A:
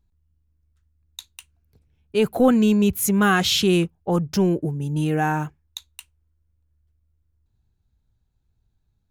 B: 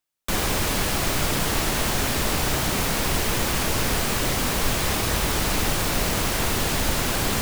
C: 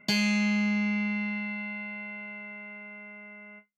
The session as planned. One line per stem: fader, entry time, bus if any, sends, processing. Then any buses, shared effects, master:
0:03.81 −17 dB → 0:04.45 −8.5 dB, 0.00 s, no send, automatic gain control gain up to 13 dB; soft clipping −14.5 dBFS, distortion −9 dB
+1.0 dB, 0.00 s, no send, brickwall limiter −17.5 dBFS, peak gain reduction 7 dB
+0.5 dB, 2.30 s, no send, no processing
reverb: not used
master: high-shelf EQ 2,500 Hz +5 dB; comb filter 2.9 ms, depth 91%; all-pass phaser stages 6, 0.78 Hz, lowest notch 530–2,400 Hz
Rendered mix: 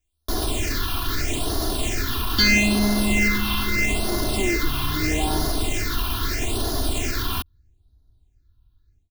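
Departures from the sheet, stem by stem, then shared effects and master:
stem C +0.5 dB → +8.0 dB
master: missing high-shelf EQ 2,500 Hz +5 dB

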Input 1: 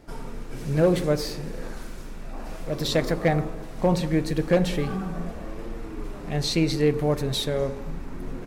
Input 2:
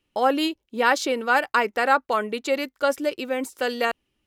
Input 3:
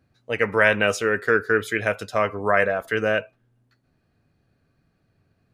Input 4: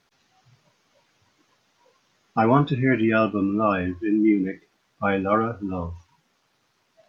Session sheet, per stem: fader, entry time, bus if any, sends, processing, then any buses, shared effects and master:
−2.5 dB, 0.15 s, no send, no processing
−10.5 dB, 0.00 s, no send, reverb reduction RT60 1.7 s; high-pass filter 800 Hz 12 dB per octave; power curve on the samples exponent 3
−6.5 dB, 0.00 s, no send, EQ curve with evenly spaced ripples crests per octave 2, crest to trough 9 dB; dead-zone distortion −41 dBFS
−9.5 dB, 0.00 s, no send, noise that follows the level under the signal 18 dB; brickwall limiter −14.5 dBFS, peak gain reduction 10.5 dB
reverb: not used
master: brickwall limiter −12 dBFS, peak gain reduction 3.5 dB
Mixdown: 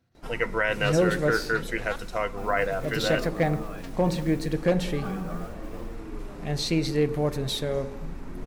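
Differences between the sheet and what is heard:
stem 3: missing dead-zone distortion −41 dBFS
stem 4 −9.5 dB → −16.5 dB

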